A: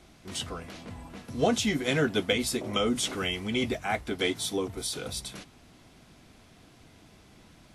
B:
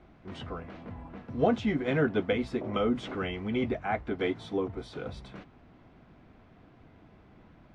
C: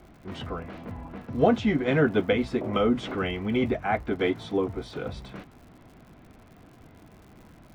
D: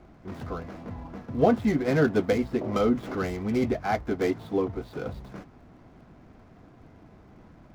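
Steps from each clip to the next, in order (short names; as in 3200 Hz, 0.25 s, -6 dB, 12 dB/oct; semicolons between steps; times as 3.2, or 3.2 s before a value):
LPF 1700 Hz 12 dB/oct
crackle 100/s -50 dBFS; gain +4.5 dB
median filter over 15 samples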